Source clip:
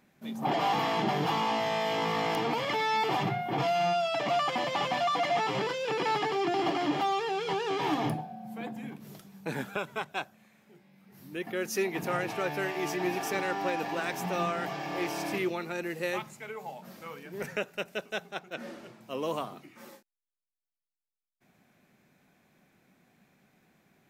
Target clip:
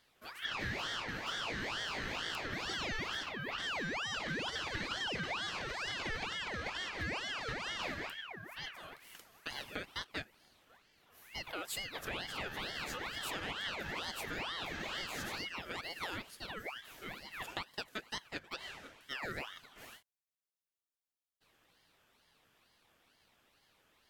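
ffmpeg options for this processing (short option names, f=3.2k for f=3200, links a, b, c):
-af "acompressor=threshold=-34dB:ratio=6,highpass=460,aeval=exprs='val(0)*sin(2*PI*1700*n/s+1700*0.5/2.2*sin(2*PI*2.2*n/s))':c=same,volume=1.5dB"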